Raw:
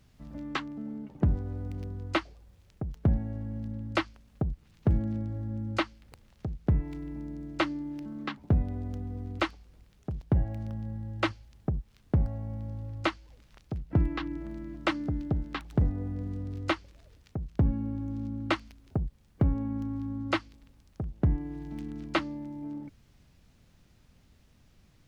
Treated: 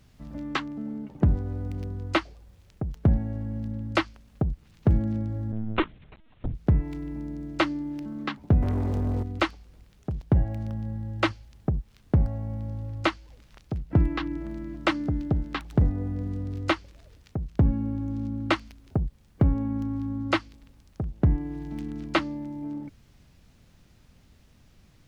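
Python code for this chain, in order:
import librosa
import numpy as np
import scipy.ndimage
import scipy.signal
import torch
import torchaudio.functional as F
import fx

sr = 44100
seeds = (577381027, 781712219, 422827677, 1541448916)

y = fx.lpc_vocoder(x, sr, seeds[0], excitation='pitch_kept', order=16, at=(5.52, 6.54))
y = fx.leveller(y, sr, passes=3, at=(8.62, 9.23))
y = y * librosa.db_to_amplitude(4.0)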